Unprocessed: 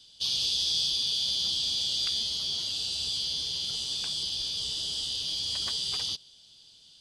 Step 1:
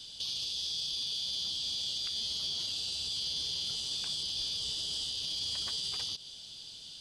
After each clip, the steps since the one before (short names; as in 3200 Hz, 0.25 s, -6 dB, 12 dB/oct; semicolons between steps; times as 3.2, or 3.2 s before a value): compressor, threshold -34 dBFS, peak gain reduction 9.5 dB; limiter -35 dBFS, peak gain reduction 10.5 dB; gain +8 dB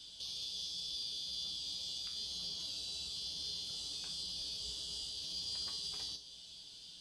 dynamic EQ 2200 Hz, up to -4 dB, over -48 dBFS, Q 0.71; resonator 59 Hz, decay 0.41 s, harmonics odd, mix 80%; gain +4 dB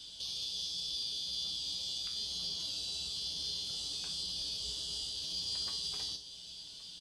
echo 1.12 s -18.5 dB; gain +3.5 dB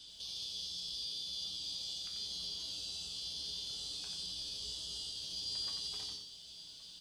lo-fi delay 89 ms, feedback 35%, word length 11-bit, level -6 dB; gain -4.5 dB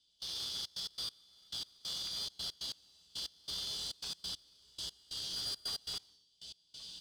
one-sided clip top -41.5 dBFS; step gate "..xxxx.x.x....x" 138 bpm -24 dB; gain +3.5 dB